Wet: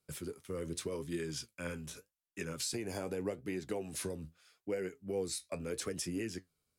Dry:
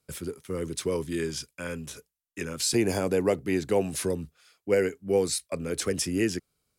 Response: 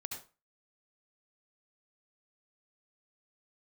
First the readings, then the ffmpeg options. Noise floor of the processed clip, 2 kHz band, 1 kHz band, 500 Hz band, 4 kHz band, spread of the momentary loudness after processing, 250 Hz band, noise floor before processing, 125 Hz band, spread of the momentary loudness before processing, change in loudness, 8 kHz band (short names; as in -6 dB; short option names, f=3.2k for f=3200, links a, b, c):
under -85 dBFS, -10.5 dB, -11.5 dB, -12.0 dB, -9.5 dB, 9 LU, -11.0 dB, -84 dBFS, -9.5 dB, 12 LU, -11.5 dB, -9.5 dB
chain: -af "acompressor=threshold=-28dB:ratio=6,flanger=delay=4.9:depth=8.8:regen=64:speed=0.83:shape=triangular,volume=-2dB"